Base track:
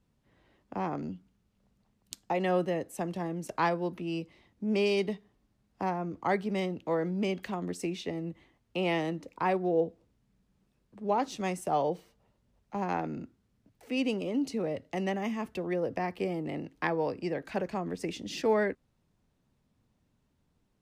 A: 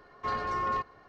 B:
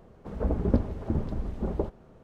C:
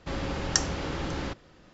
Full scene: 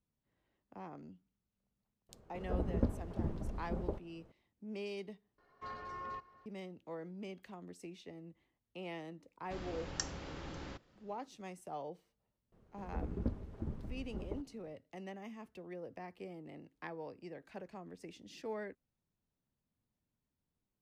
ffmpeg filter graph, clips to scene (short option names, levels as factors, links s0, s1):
-filter_complex "[2:a]asplit=2[s0][s1];[0:a]volume=0.168[s2];[1:a]aecho=1:1:274:0.0891[s3];[s1]equalizer=f=680:w=1.1:g=-4.5[s4];[s2]asplit=2[s5][s6];[s5]atrim=end=5.384[s7];[s3]atrim=end=1.08,asetpts=PTS-STARTPTS,volume=0.2[s8];[s6]atrim=start=6.456[s9];[s0]atrim=end=2.23,asetpts=PTS-STARTPTS,volume=0.355,afade=t=in:d=0.004:c=hsin,afade=t=out:st=2.226:d=0.004:c=hsin,adelay=2090[s10];[3:a]atrim=end=1.73,asetpts=PTS-STARTPTS,volume=0.211,afade=t=in:d=0.004:c=hsin,afade=t=out:st=1.726:d=0.004:c=hsin,adelay=9440[s11];[s4]atrim=end=2.23,asetpts=PTS-STARTPTS,volume=0.237,afade=t=in:d=0.004:c=hsin,afade=t=out:st=2.226:d=0.004:c=hsin,adelay=552132S[s12];[s7][s8]acrossfade=d=0.004:c1=hsin:c2=hsin[s13];[s13][s9]acrossfade=d=0.004:c1=hsin:c2=hsin[s14];[s14][s10][s11][s12]amix=inputs=4:normalize=0"